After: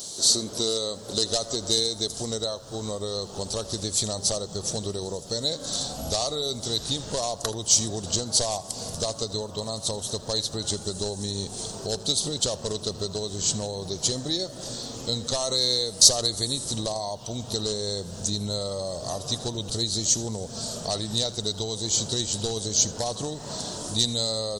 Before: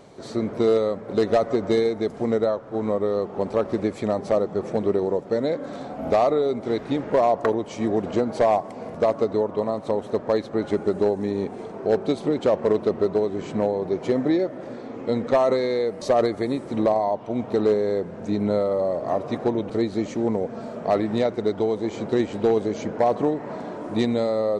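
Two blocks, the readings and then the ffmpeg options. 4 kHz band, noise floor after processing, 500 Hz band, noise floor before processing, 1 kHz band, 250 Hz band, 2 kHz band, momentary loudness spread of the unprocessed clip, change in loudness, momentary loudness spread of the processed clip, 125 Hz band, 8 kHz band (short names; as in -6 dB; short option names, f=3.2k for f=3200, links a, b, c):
+16.5 dB, -40 dBFS, -10.5 dB, -38 dBFS, -9.5 dB, -10.0 dB, -9.0 dB, 6 LU, -2.0 dB, 10 LU, +0.5 dB, n/a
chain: -filter_complex "[0:a]asubboost=boost=7.5:cutoff=100,acompressor=threshold=-31dB:ratio=2,aexciter=amount=14.5:drive=9.4:freq=3.6k,asplit=2[a][b];[b]aecho=0:1:80:0.106[c];[a][c]amix=inputs=2:normalize=0,volume=-2dB"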